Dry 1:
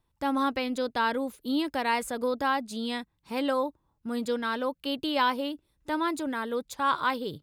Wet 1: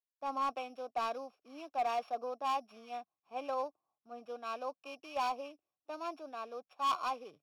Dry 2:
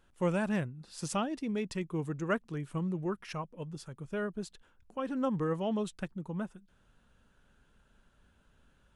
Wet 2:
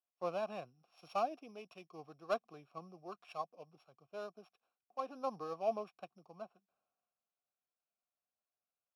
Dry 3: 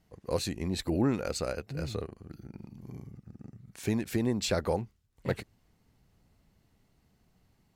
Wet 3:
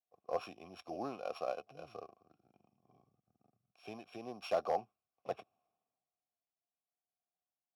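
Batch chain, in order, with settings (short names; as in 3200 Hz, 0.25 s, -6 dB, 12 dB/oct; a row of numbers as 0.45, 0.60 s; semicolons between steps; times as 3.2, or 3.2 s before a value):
sample sorter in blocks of 8 samples; HPF 74 Hz; in parallel at 0 dB: compressor, threshold -39 dBFS; on the sum: vowel filter a; overloaded stage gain 30.5 dB; three-band expander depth 70%; gain +1.5 dB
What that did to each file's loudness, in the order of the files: -9.0, -7.5, -9.0 LU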